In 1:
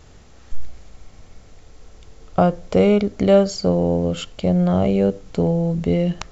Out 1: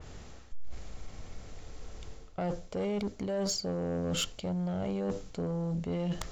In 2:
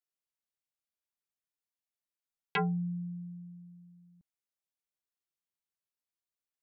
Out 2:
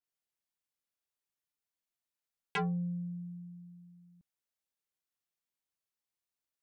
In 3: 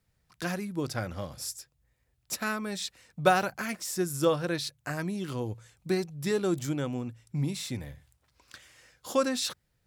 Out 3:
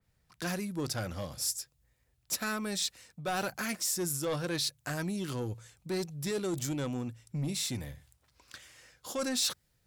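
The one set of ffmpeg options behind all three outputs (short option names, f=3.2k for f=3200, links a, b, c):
-af "areverse,acompressor=threshold=-26dB:ratio=16,areverse,asoftclip=type=tanh:threshold=-27dB,adynamicequalizer=threshold=0.00282:dfrequency=3400:dqfactor=0.7:tfrequency=3400:tqfactor=0.7:attack=5:release=100:ratio=0.375:range=3:mode=boostabove:tftype=highshelf"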